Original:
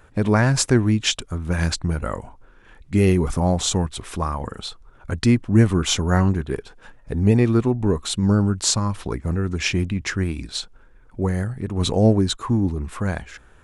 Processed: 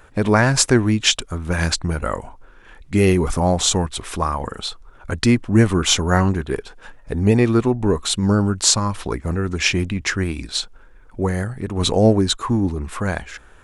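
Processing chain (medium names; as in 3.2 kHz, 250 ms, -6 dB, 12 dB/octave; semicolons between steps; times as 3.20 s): peaking EQ 120 Hz -5.5 dB 2.7 oct; trim +5 dB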